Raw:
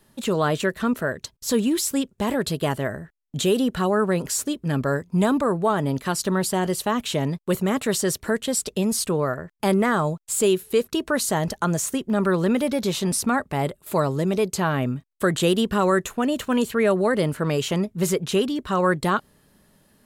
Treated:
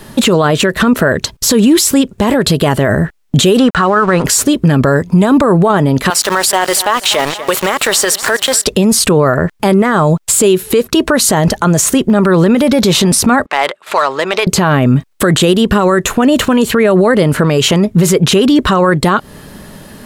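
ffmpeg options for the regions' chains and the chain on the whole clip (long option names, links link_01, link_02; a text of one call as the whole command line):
ffmpeg -i in.wav -filter_complex "[0:a]asettb=1/sr,asplit=3[link_01][link_02][link_03];[link_01]atrim=end=3.584[link_04];[link_02]atrim=start=3.58:end=4.24,asetpts=PTS-STARTPTS,afade=type=in:duration=0.004:curve=qsin,afade=type=out:start_time=0.656:duration=0.004:curve=qsin,equalizer=frequency=1300:width_type=o:width=1.2:gain=12,aeval=exprs='sgn(val(0))*max(abs(val(0))-0.00944,0)':channel_layout=same,lowpass=frequency=9500:width=0.5412,lowpass=frequency=9500:width=1.3066[link_05];[link_03]atrim=start=4.236[link_06];[link_04][link_05]acrossfade=duration=0.004:curve1=hsin:curve2=qsin[link_07];[link_07][link_06]acrossfade=duration=0.004:curve1=qsin:curve2=hsin,asettb=1/sr,asplit=3[link_08][link_09][link_10];[link_08]atrim=end=6.104[link_11];[link_09]atrim=start=6.1:end=8.66,asetpts=PTS-STARTPTS,afade=type=in:duration=0.004:curve=qsin,afade=type=out:start_time=2.556:duration=0.004:curve=qsin,highpass=720,aeval=exprs='val(0)*gte(abs(val(0)),0.015)':channel_layout=same,aecho=1:1:242|484|726:0.1|0.037|0.0137,atrim=end_sample=112896[link_12];[link_10]atrim=start=8.656[link_13];[link_11][link_12]acrossfade=duration=0.004:curve1=hsin:curve2=qsin[link_14];[link_14][link_13]acrossfade=duration=0.004:curve1=qsin:curve2=hsin,asettb=1/sr,asplit=3[link_15][link_16][link_17];[link_15]atrim=end=13.464[link_18];[link_16]atrim=start=13.46:end=14.47,asetpts=PTS-STARTPTS,afade=type=in:duration=0.004:curve=qsin,afade=type=out:start_time=1.006:duration=0.004:curve=qsin,highpass=1100,adynamicsmooth=sensitivity=6:basefreq=2700[link_19];[link_17]atrim=start=14.466[link_20];[link_18][link_19]acrossfade=duration=0.004:curve1=hsin:curve2=qsin[link_21];[link_21][link_20]acrossfade=duration=0.004:curve1=qsin:curve2=hsin,highshelf=frequency=6700:gain=-5.5,acompressor=threshold=-27dB:ratio=6,alimiter=level_in=27dB:limit=-1dB:release=50:level=0:latency=1,volume=-1dB" out.wav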